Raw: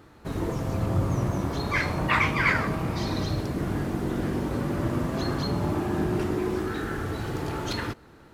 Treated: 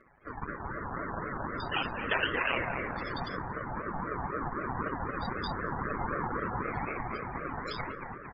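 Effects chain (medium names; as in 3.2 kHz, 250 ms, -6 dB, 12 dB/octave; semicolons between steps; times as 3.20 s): cycle switcher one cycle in 2, muted; high-pass 380 Hz 12 dB/octave; loudest bins only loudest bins 32; comb 7.3 ms, depth 75%; bucket-brigade echo 226 ms, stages 2048, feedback 67%, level -3 dB; ring modulator with a swept carrier 650 Hz, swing 35%, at 3.9 Hz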